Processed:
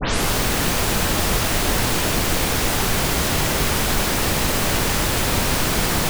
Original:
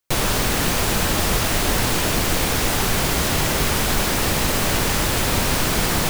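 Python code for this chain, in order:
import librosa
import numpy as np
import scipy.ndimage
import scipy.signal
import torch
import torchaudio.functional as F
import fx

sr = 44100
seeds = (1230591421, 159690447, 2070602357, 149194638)

y = fx.tape_start_head(x, sr, length_s=0.31)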